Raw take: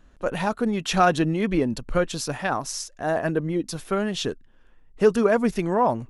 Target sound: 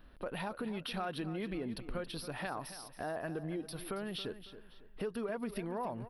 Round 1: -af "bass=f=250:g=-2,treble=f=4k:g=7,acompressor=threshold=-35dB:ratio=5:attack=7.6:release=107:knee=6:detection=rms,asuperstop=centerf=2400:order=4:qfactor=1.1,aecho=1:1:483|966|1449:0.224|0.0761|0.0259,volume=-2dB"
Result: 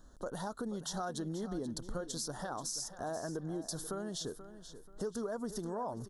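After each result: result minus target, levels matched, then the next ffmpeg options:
echo 0.207 s late; 8000 Hz band +10.5 dB
-af "bass=f=250:g=-2,treble=f=4k:g=7,acompressor=threshold=-35dB:ratio=5:attack=7.6:release=107:knee=6:detection=rms,asuperstop=centerf=2400:order=4:qfactor=1.1,aecho=1:1:276|552|828:0.224|0.0761|0.0259,volume=-2dB"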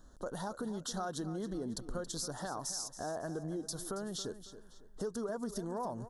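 8000 Hz band +10.5 dB
-af "bass=f=250:g=-2,treble=f=4k:g=7,acompressor=threshold=-35dB:ratio=5:attack=7.6:release=107:knee=6:detection=rms,asuperstop=centerf=7000:order=4:qfactor=1.1,aecho=1:1:276|552|828:0.224|0.0761|0.0259,volume=-2dB"

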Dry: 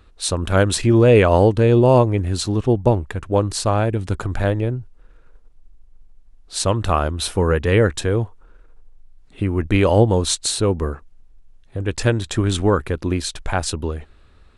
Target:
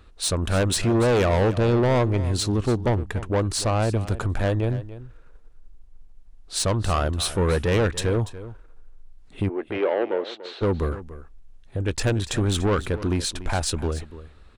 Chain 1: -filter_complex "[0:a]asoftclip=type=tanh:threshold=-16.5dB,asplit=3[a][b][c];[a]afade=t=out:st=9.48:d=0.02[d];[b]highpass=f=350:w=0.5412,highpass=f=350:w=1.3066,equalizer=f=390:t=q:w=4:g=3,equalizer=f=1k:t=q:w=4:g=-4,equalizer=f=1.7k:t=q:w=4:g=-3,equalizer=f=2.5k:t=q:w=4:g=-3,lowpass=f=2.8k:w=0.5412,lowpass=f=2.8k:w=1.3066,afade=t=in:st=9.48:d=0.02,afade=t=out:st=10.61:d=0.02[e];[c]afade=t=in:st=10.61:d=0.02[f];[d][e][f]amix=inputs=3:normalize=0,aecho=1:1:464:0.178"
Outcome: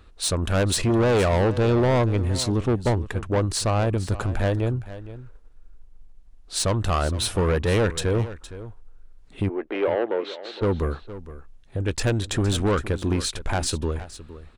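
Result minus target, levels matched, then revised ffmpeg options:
echo 0.175 s late
-filter_complex "[0:a]asoftclip=type=tanh:threshold=-16.5dB,asplit=3[a][b][c];[a]afade=t=out:st=9.48:d=0.02[d];[b]highpass=f=350:w=0.5412,highpass=f=350:w=1.3066,equalizer=f=390:t=q:w=4:g=3,equalizer=f=1k:t=q:w=4:g=-4,equalizer=f=1.7k:t=q:w=4:g=-3,equalizer=f=2.5k:t=q:w=4:g=-3,lowpass=f=2.8k:w=0.5412,lowpass=f=2.8k:w=1.3066,afade=t=in:st=9.48:d=0.02,afade=t=out:st=10.61:d=0.02[e];[c]afade=t=in:st=10.61:d=0.02[f];[d][e][f]amix=inputs=3:normalize=0,aecho=1:1:289:0.178"

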